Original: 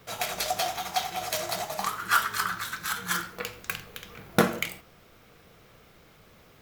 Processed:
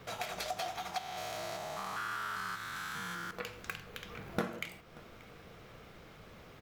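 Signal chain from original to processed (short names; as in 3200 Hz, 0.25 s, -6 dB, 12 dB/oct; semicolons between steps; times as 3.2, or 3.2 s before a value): 0.98–3.31 stepped spectrum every 0.2 s; LPF 4000 Hz 6 dB/oct; compressor 2:1, threshold -46 dBFS, peak gain reduction 16.5 dB; echo 0.583 s -22 dB; gain +2.5 dB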